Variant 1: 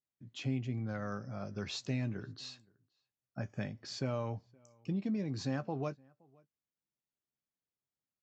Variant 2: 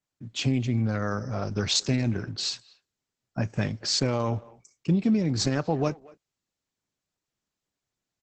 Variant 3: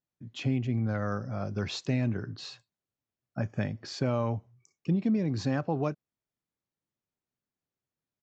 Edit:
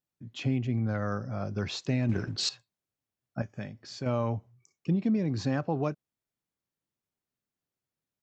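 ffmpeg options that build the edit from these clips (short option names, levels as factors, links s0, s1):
-filter_complex "[2:a]asplit=3[s0][s1][s2];[s0]atrim=end=2.092[s3];[1:a]atrim=start=2.088:end=2.492[s4];[s1]atrim=start=2.488:end=3.422[s5];[0:a]atrim=start=3.418:end=4.062[s6];[s2]atrim=start=4.058[s7];[s3][s4]acrossfade=d=0.004:c1=hsin:c2=hsin[s8];[s8][s5]acrossfade=d=0.004:c1=hsin:c2=hsin[s9];[s9][s6]acrossfade=d=0.004:c1=hsin:c2=hsin[s10];[s10][s7]acrossfade=d=0.004:c1=hsin:c2=hsin"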